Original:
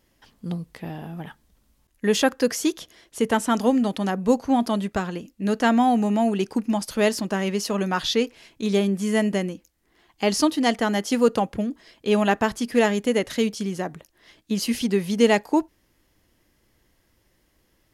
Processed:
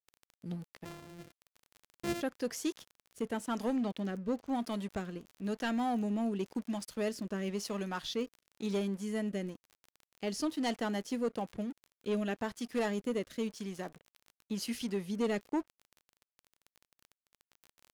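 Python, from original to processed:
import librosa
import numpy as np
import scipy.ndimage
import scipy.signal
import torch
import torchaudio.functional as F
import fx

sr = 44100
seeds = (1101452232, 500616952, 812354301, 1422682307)

y = fx.sample_sort(x, sr, block=128, at=(0.84, 2.2), fade=0.02)
y = fx.lowpass(y, sr, hz=5400.0, slope=12, at=(3.76, 4.48))
y = np.sign(y) * np.maximum(np.abs(y) - 10.0 ** (-41.5 / 20.0), 0.0)
y = fx.rotary(y, sr, hz=1.0)
y = fx.dmg_crackle(y, sr, seeds[0], per_s=23.0, level_db=-33.0)
y = 10.0 ** (-17.0 / 20.0) * np.tanh(y / 10.0 ** (-17.0 / 20.0))
y = y * 10.0 ** (-8.5 / 20.0)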